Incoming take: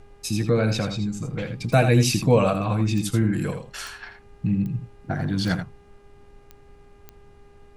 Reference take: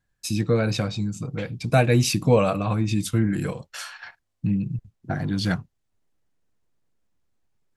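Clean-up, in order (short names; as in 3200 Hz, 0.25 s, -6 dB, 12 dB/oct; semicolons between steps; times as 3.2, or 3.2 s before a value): de-click; de-hum 404.8 Hz, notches 7; noise print and reduce 22 dB; inverse comb 82 ms -8.5 dB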